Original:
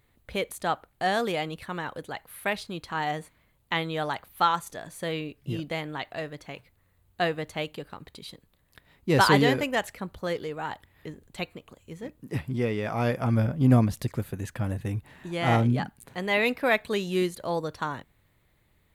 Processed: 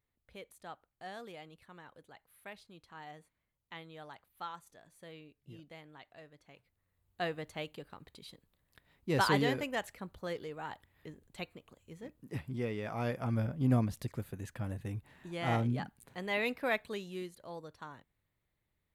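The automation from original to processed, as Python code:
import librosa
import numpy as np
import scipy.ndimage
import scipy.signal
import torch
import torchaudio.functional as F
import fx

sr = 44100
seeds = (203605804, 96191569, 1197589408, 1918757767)

y = fx.gain(x, sr, db=fx.line((6.37, -20.0), (7.29, -9.0), (16.75, -9.0), (17.23, -16.5)))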